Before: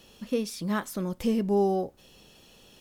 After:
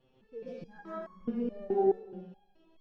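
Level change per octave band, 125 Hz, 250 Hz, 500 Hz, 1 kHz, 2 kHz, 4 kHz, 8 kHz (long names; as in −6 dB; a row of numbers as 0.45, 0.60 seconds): −14.5 dB, −8.5 dB, −3.5 dB, −5.5 dB, −14.5 dB, below −20 dB, below −35 dB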